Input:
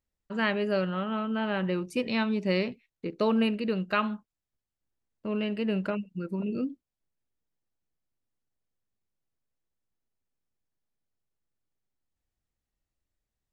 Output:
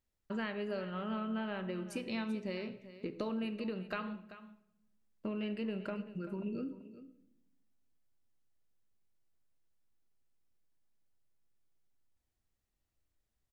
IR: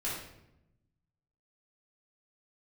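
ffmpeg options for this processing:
-filter_complex "[0:a]acompressor=threshold=0.0158:ratio=10,aecho=1:1:387:0.178,asplit=2[s0][s1];[1:a]atrim=start_sample=2205[s2];[s1][s2]afir=irnorm=-1:irlink=0,volume=0.224[s3];[s0][s3]amix=inputs=2:normalize=0,volume=0.891"

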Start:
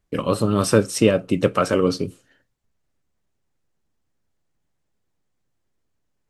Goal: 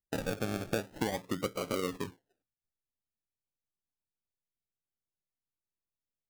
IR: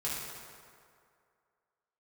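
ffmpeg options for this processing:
-af "lowpass=2100,aemphasis=mode=production:type=75kf,afftdn=nr=17:nf=-41,adynamicequalizer=threshold=0.0178:dfrequency=130:dqfactor=1.3:tfrequency=130:tqfactor=1.3:attack=5:release=100:ratio=0.375:range=2:mode=cutabove:tftype=bell,acompressor=threshold=0.0631:ratio=4,acrusher=samples=35:mix=1:aa=0.000001:lfo=1:lforange=21:lforate=0.46,volume=0.447"

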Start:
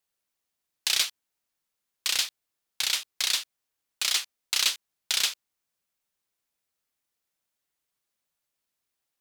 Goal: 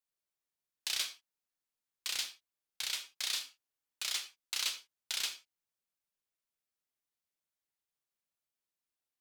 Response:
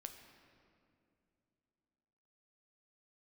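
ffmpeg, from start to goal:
-filter_complex "[0:a]asettb=1/sr,asplit=3[s0][s1][s2];[s0]atrim=end=3.164[s3];[s1]atrim=start=3.16:end=4.02,asetpts=PTS-STARTPTS,afade=t=in:d=0.004:c=qsin,afade=t=out:st=0.856:d=0.004:c=qsin,asplit=2[s4][s5];[s5]adelay=29,volume=0.501[s6];[s4][s6]amix=inputs=2:normalize=0,atrim=end_sample=37926[s7];[s2]atrim=start=4.016[s8];[s3][s7]acrossfade=d=0.004:c1=hsin:c2=qsin[s9];[s9][s8]acrossfade=d=0.004:c1=qsin:c2=hsin[s10];[1:a]atrim=start_sample=2205,afade=t=out:st=0.16:d=0.01,atrim=end_sample=7497[s11];[s10][s11]afir=irnorm=-1:irlink=0,volume=0.596"

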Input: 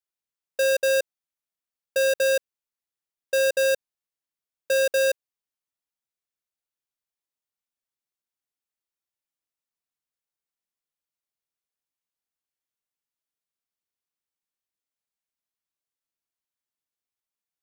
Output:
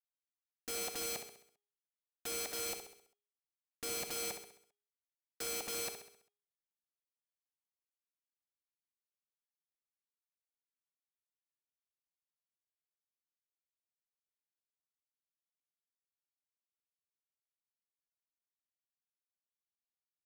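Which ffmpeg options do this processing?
-filter_complex "[0:a]asetrate=38367,aresample=44100,acrossover=split=4700[s0][s1];[s0]acrusher=bits=4:mix=0:aa=0.000001[s2];[s1]asoftclip=type=tanh:threshold=0.0266[s3];[s2][s3]amix=inputs=2:normalize=0,asplit=3[s4][s5][s6];[s4]bandpass=f=730:t=q:w=8,volume=1[s7];[s5]bandpass=f=1090:t=q:w=8,volume=0.501[s8];[s6]bandpass=f=2440:t=q:w=8,volume=0.355[s9];[s7][s8][s9]amix=inputs=3:normalize=0,bandreject=f=410.8:t=h:w=4,bandreject=f=821.6:t=h:w=4,bandreject=f=1232.4:t=h:w=4,bandreject=f=1643.2:t=h:w=4,bandreject=f=2054:t=h:w=4,bandreject=f=2464.8:t=h:w=4,bandreject=f=2875.6:t=h:w=4,bandreject=f=3286.4:t=h:w=4,bandreject=f=3697.2:t=h:w=4,bandreject=f=4108:t=h:w=4,aeval=exprs='(mod(133*val(0)+1,2)-1)/133':c=same,equalizer=f=280:w=0.88:g=11,asplit=2[s10][s11];[s11]aecho=0:1:66|132|198|264|330|396:0.398|0.195|0.0956|0.0468|0.023|0.0112[s12];[s10][s12]amix=inputs=2:normalize=0,volume=1.78"

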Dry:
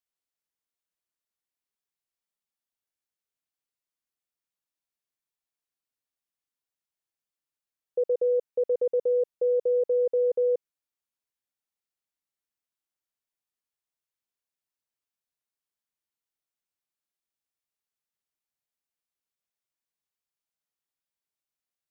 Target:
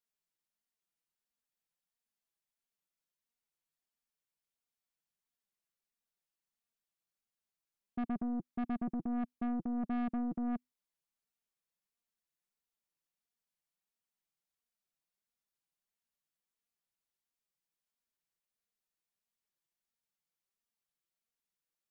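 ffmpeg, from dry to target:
-af "afreqshift=-250,flanger=delay=4.2:depth=1.9:regen=25:speed=1.5:shape=sinusoidal,aeval=exprs='(tanh(56.2*val(0)+0.3)-tanh(0.3))/56.2':c=same,volume=1.26"

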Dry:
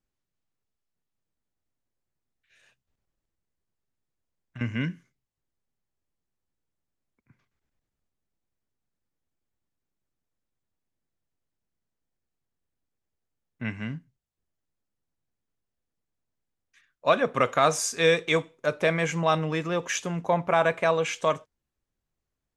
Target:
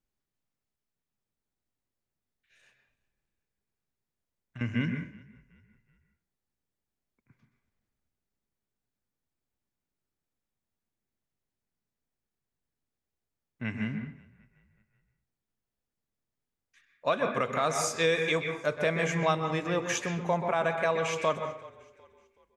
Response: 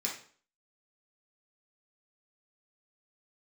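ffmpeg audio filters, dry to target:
-filter_complex "[0:a]asplit=4[s0][s1][s2][s3];[s1]adelay=375,afreqshift=-31,volume=0.0668[s4];[s2]adelay=750,afreqshift=-62,volume=0.0275[s5];[s3]adelay=1125,afreqshift=-93,volume=0.0112[s6];[s0][s4][s5][s6]amix=inputs=4:normalize=0,asplit=2[s7][s8];[1:a]atrim=start_sample=2205,lowpass=3200,adelay=126[s9];[s8][s9]afir=irnorm=-1:irlink=0,volume=0.398[s10];[s7][s10]amix=inputs=2:normalize=0,alimiter=limit=0.224:level=0:latency=1:release=327,volume=0.75"

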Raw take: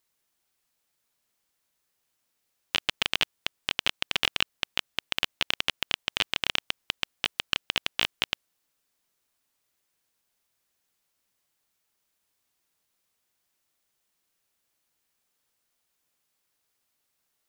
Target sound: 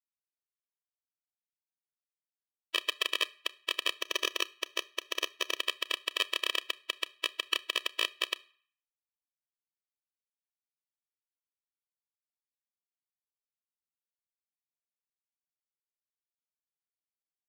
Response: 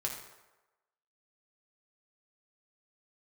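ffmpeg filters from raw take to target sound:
-filter_complex "[0:a]asettb=1/sr,asplit=3[s0][s1][s2];[s0]atrim=end=3.944[s3];[s1]atrim=start=3.94:end=5.55,asetpts=PTS-STARTPTS,afade=t=in:d=0.004:c=qsin,afade=t=out:st=1.606:d=0.004:c=qsin,aeval=exprs='if(lt(val(0),0),0.447*val(0),val(0))':c=same[s4];[s2]atrim=start=5.546[s5];[s3][s4]acrossfade=d=0.004:c1=hsin:c2=qsin[s6];[s6][s5]acrossfade=d=0.004:c1=qsin:c2=hsin,acrusher=bits=4:mix=0:aa=0.000001,asplit=2[s7][s8];[1:a]atrim=start_sample=2205,asetrate=83790,aresample=44100,adelay=31[s9];[s8][s9]afir=irnorm=-1:irlink=0,volume=0.178[s10];[s7][s10]amix=inputs=2:normalize=0,afftfilt=real='re*eq(mod(floor(b*sr/1024/330),2),1)':imag='im*eq(mod(floor(b*sr/1024/330),2),1)':win_size=1024:overlap=0.75"

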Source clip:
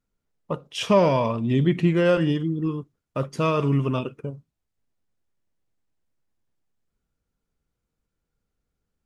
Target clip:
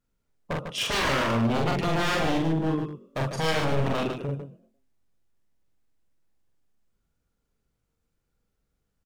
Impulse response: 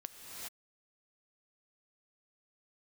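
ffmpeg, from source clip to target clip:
-filter_complex "[0:a]asplit=2[s0][s1];[s1]asplit=3[s2][s3][s4];[s2]adelay=115,afreqshift=41,volume=0.0891[s5];[s3]adelay=230,afreqshift=82,volume=0.0355[s6];[s4]adelay=345,afreqshift=123,volume=0.0143[s7];[s5][s6][s7]amix=inputs=3:normalize=0[s8];[s0][s8]amix=inputs=2:normalize=0,aeval=exprs='0.075*(abs(mod(val(0)/0.075+3,4)-2)-1)':c=same,asplit=2[s9][s10];[s10]aecho=0:1:43.73|148.7:0.794|0.447[s11];[s9][s11]amix=inputs=2:normalize=0"

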